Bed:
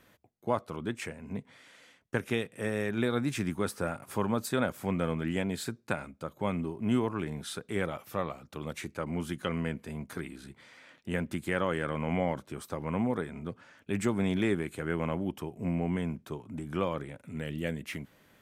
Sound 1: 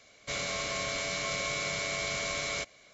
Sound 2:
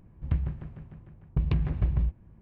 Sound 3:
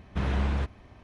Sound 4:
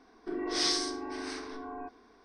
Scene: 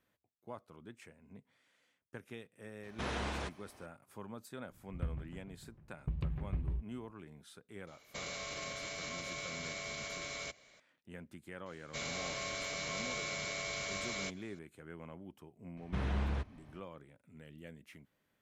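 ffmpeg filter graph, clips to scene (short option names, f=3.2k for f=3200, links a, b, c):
-filter_complex "[3:a]asplit=2[a][b];[1:a]asplit=2[c][d];[0:a]volume=-17.5dB[e];[a]bass=f=250:g=-13,treble=f=4k:g=9[f];[c]alimiter=level_in=4dB:limit=-24dB:level=0:latency=1:release=71,volume=-4dB[g];[f]atrim=end=1.03,asetpts=PTS-STARTPTS,volume=-3.5dB,afade=t=in:d=0.004:c=hsin,afade=t=out:st=1.026:d=0.004:c=hsin,adelay=2830[h];[2:a]atrim=end=2.41,asetpts=PTS-STARTPTS,volume=-11dB,afade=t=in:d=0.004:c=hsin,afade=t=out:st=2.406:d=0.004:c=hsin,adelay=4710[i];[g]atrim=end=2.93,asetpts=PTS-STARTPTS,volume=-5.5dB,afade=t=in:d=0.004:c=hsin,afade=t=out:st=2.926:d=0.004:c=hsin,adelay=7870[j];[d]atrim=end=2.93,asetpts=PTS-STARTPTS,volume=-6.5dB,afade=t=in:d=0.004:c=hsin,afade=t=out:st=2.926:d=0.004:c=hsin,adelay=11660[k];[b]atrim=end=1.03,asetpts=PTS-STARTPTS,volume=-7.5dB,afade=t=in:d=0.004:c=hsin,afade=t=out:st=1.026:d=0.004:c=hsin,adelay=15770[l];[e][h][i][j][k][l]amix=inputs=6:normalize=0"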